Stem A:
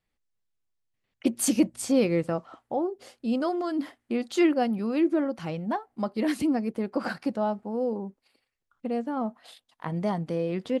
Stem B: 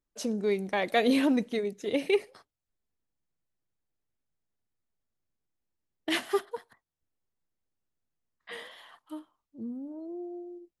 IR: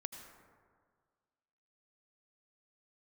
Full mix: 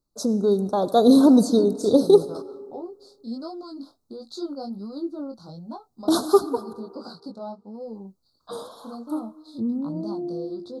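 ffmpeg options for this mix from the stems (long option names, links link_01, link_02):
-filter_complex "[0:a]equalizer=frequency=4300:width_type=o:width=0.74:gain=13.5,flanger=delay=17.5:depth=4.9:speed=1.4,volume=-7.5dB[link_01];[1:a]dynaudnorm=framelen=110:gausssize=21:maxgain=4.5dB,volume=2.5dB,asplit=3[link_02][link_03][link_04];[link_02]atrim=end=7.01,asetpts=PTS-STARTPTS,afade=type=out:start_time=7.006:duration=0.004:curve=hsin[link_05];[link_03]atrim=start=7.01:end=7.87,asetpts=PTS-STARTPTS,volume=0[link_06];[link_04]atrim=start=7.87,asetpts=PTS-STARTPTS,afade=type=in:duration=0.004:curve=hsin[link_07];[link_05][link_06][link_07]concat=n=3:v=0:a=1,asplit=2[link_08][link_09];[link_09]volume=-4.5dB[link_10];[2:a]atrim=start_sample=2205[link_11];[link_10][link_11]afir=irnorm=-1:irlink=0[link_12];[link_01][link_08][link_12]amix=inputs=3:normalize=0,asuperstop=centerf=2300:order=12:qfactor=0.96,equalizer=frequency=120:width_type=o:width=2.9:gain=4.5"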